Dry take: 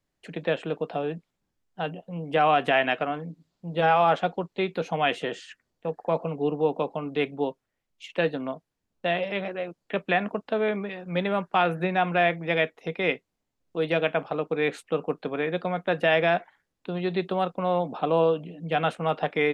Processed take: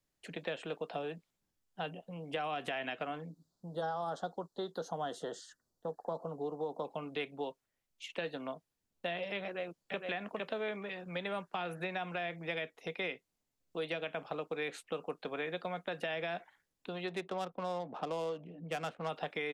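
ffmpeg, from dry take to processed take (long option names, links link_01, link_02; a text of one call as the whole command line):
ffmpeg -i in.wav -filter_complex "[0:a]asettb=1/sr,asplit=3[link_01][link_02][link_03];[link_01]atrim=end=3.294[link_04];[link_02]atrim=start=3.29:end=6.85,asetpts=PTS-STARTPTS,afade=type=in:duration=0.004:curve=qsin,afade=type=out:start_time=3.556:duration=0.004:curve=qsin,asuperstop=centerf=2400:order=4:qfactor=0.95[link_05];[link_03]atrim=start=6.846[link_06];[link_04][link_05]acrossfade=duration=0.004:curve1=hsin:curve2=qsin[link_07];[link_07][link_06]acrossfade=duration=0.004:curve1=qsin:curve2=hsin,asplit=2[link_08][link_09];[link_09]afade=type=in:start_time=9.45:duration=0.01,afade=type=out:start_time=10.07:duration=0.01,aecho=0:1:460|920|1380:0.707946|0.106192|0.0159288[link_10];[link_08][link_10]amix=inputs=2:normalize=0,asplit=3[link_11][link_12][link_13];[link_11]afade=type=out:start_time=17.07:duration=0.02[link_14];[link_12]adynamicsmooth=sensitivity=3:basefreq=1600,afade=type=in:start_time=17.07:duration=0.02,afade=type=out:start_time=19.08:duration=0.02[link_15];[link_13]afade=type=in:start_time=19.08:duration=0.02[link_16];[link_14][link_15][link_16]amix=inputs=3:normalize=0,highshelf=frequency=4000:gain=8,alimiter=limit=-14dB:level=0:latency=1:release=100,acrossover=split=450|3900[link_17][link_18][link_19];[link_17]acompressor=threshold=-39dB:ratio=4[link_20];[link_18]acompressor=threshold=-31dB:ratio=4[link_21];[link_19]acompressor=threshold=-45dB:ratio=4[link_22];[link_20][link_21][link_22]amix=inputs=3:normalize=0,volume=-6dB" out.wav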